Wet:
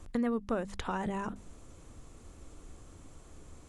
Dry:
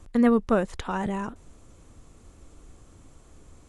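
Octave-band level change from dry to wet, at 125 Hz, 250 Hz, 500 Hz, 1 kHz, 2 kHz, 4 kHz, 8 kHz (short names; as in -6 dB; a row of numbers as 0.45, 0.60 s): -7.0, -10.0, -10.0, -7.0, -7.5, -4.5, -3.5 dB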